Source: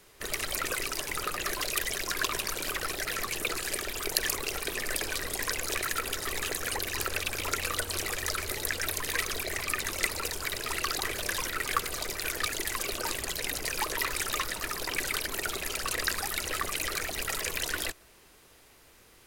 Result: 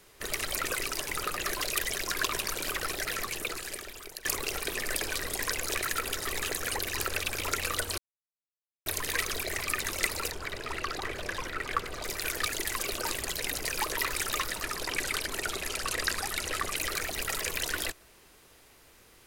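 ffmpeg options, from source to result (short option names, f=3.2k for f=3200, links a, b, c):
-filter_complex "[0:a]asettb=1/sr,asplit=3[a][b][c];[a]atrim=end=10.314[d];[b]atrim=start=10.31:end=12.04,asetpts=PTS-STARTPTS,afade=t=in:d=0.004:c=qsin,afade=t=out:st=1.726:d=0.004:c=qsin,aemphasis=mode=reproduction:type=75kf[e];[c]atrim=start=12.036[f];[d][e]acrossfade=d=0.004:c1=hsin:c2=qsin[g];[g][f]acrossfade=d=0.004:c1=qsin:c2=hsin,asettb=1/sr,asplit=3[h][i][j];[h]atrim=end=14.624[k];[i]atrim=start=14.62:end=16.76,asetpts=PTS-STARTPTS,afade=t=in:d=0.004:c=qsin,afade=t=out:st=2.136:d=0.004:c=qsin,lowpass=12k[l];[j]atrim=start=16.756[m];[k][l]acrossfade=d=0.004:c1=hsin:c2=qsin[n];[n][m]acrossfade=d=0.004:c1=qsin:c2=hsin,asplit=4[o][p][q][r];[o]atrim=end=4.25,asetpts=PTS-STARTPTS,afade=t=out:st=3.07:d=1.18:silence=0.11885[s];[p]atrim=start=4.25:end=7.98,asetpts=PTS-STARTPTS,afade=t=in:d=0.004:c=hsin:silence=0.11885,afade=t=out:st=3.726:d=0.004:c=hsin[t];[q]atrim=start=7.98:end=8.86,asetpts=PTS-STARTPTS,volume=0[u];[r]atrim=start=8.86,asetpts=PTS-STARTPTS,afade=t=in:d=0.004:c=hsin[v];[s][t][u][v]concat=n=4:v=0:a=1"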